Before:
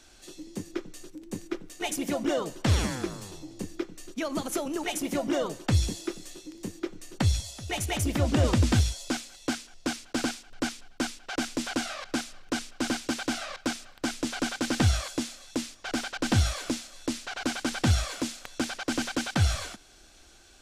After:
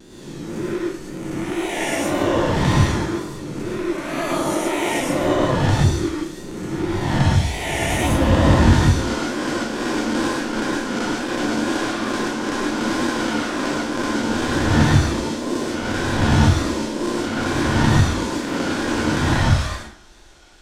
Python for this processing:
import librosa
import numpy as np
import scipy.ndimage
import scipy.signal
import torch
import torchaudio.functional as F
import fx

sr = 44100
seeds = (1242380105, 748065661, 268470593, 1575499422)

y = fx.spec_swells(x, sr, rise_s=1.74)
y = fx.high_shelf(y, sr, hz=4300.0, db=-7.5)
y = fx.small_body(y, sr, hz=(950.0, 1800.0, 3400.0), ring_ms=45, db=7)
y = fx.wow_flutter(y, sr, seeds[0], rate_hz=2.1, depth_cents=110.0)
y = fx.rev_plate(y, sr, seeds[1], rt60_s=0.54, hf_ratio=0.8, predelay_ms=90, drr_db=-3.5)